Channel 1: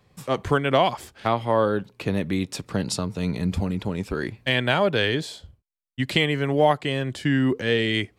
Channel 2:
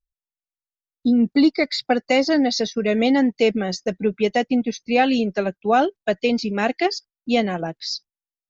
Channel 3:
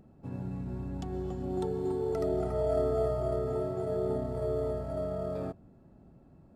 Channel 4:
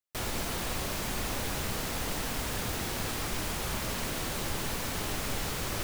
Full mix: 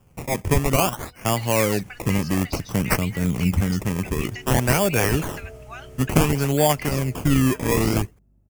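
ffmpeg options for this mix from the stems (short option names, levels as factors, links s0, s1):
-filter_complex "[0:a]aemphasis=mode=production:type=50fm,acrusher=samples=21:mix=1:aa=0.000001:lfo=1:lforange=21:lforate=0.56,volume=0.794[s0];[1:a]highpass=f=1300:w=0.5412,highpass=f=1300:w=1.3066,acompressor=threshold=0.0224:ratio=6,volume=0.631[s1];[2:a]aeval=exprs='val(0)+0.00282*(sin(2*PI*50*n/s)+sin(2*PI*2*50*n/s)/2+sin(2*PI*3*50*n/s)/3+sin(2*PI*4*50*n/s)/4+sin(2*PI*5*50*n/s)/5)':c=same,adelay=2500,volume=0.15[s2];[3:a]alimiter=level_in=2.24:limit=0.0631:level=0:latency=1:release=318,volume=0.447,highshelf=f=9500:g=-11.5,adelay=1650,volume=0.188[s3];[s0][s1][s2][s3]amix=inputs=4:normalize=0,aexciter=amount=1.5:drive=1.7:freq=2100,lowshelf=f=240:g=9.5"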